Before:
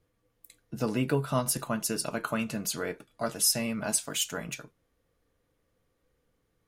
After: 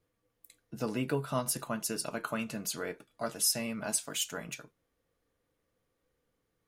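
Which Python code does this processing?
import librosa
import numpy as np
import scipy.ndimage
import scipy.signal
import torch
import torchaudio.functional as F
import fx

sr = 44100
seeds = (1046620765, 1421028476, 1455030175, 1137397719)

y = fx.low_shelf(x, sr, hz=130.0, db=-5.5)
y = y * 10.0 ** (-3.5 / 20.0)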